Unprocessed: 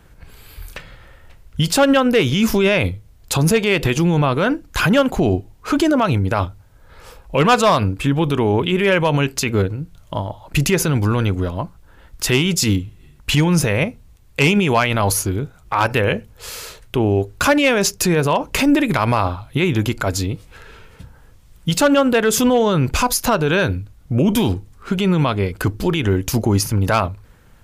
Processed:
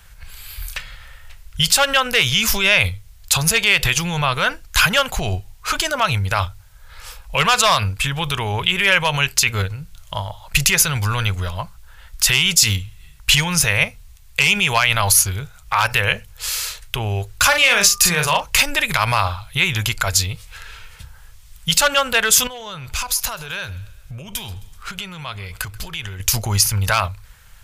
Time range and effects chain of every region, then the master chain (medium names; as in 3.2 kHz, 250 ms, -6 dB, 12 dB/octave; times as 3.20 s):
17.51–18.39 s: doubling 40 ms -6 dB + whistle 1.2 kHz -38 dBFS
22.47–26.20 s: compression 4:1, threshold -26 dBFS + feedback delay 132 ms, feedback 51%, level -21 dB
whole clip: amplifier tone stack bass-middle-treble 10-0-10; loudness maximiser +11 dB; trim -1 dB